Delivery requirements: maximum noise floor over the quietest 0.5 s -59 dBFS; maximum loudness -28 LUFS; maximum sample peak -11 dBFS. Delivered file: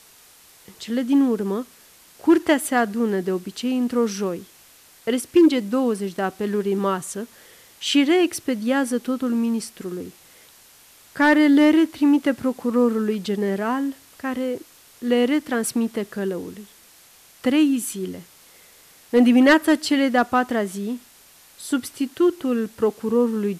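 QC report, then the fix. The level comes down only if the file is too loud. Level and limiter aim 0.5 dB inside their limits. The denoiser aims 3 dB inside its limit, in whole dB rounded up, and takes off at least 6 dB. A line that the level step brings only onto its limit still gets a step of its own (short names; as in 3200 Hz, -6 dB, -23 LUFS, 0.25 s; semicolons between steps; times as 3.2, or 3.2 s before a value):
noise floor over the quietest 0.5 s -51 dBFS: fail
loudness -21.0 LUFS: fail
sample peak -8.0 dBFS: fail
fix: denoiser 6 dB, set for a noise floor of -51 dBFS; gain -7.5 dB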